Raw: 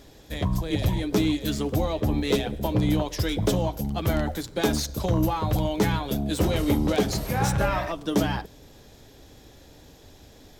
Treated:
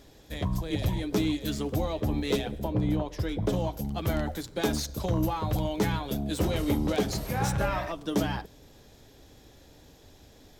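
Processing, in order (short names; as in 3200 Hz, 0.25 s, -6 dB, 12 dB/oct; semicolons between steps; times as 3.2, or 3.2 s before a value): 2.63–3.52 high shelf 2100 Hz -> 3000 Hz -11 dB; gain -4 dB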